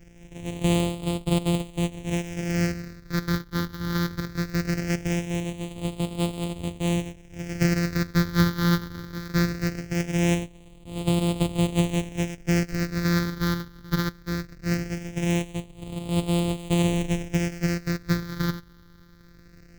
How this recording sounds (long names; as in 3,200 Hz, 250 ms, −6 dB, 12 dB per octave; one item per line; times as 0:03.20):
a buzz of ramps at a fixed pitch in blocks of 256 samples
phaser sweep stages 6, 0.2 Hz, lowest notch 690–1,600 Hz